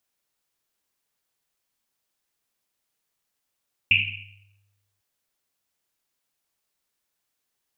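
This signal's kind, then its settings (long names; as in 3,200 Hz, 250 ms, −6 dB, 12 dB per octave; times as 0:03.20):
drum after Risset, pitch 100 Hz, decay 1.29 s, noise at 2,600 Hz, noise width 570 Hz, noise 80%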